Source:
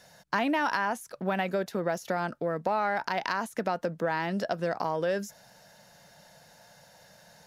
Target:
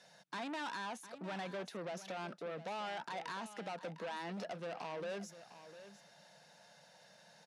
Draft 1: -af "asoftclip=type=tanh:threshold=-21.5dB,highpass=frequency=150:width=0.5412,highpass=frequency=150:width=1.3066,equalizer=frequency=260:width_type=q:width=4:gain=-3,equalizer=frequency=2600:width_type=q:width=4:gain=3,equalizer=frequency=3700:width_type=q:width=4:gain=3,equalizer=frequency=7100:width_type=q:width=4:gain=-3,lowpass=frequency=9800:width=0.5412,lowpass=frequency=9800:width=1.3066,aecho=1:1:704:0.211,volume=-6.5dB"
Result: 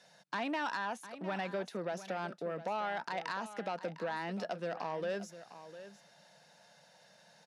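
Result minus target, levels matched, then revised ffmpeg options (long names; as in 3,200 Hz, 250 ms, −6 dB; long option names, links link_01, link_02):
soft clipping: distortion −9 dB
-af "asoftclip=type=tanh:threshold=-32.5dB,highpass=frequency=150:width=0.5412,highpass=frequency=150:width=1.3066,equalizer=frequency=260:width_type=q:width=4:gain=-3,equalizer=frequency=2600:width_type=q:width=4:gain=3,equalizer=frequency=3700:width_type=q:width=4:gain=3,equalizer=frequency=7100:width_type=q:width=4:gain=-3,lowpass=frequency=9800:width=0.5412,lowpass=frequency=9800:width=1.3066,aecho=1:1:704:0.211,volume=-6.5dB"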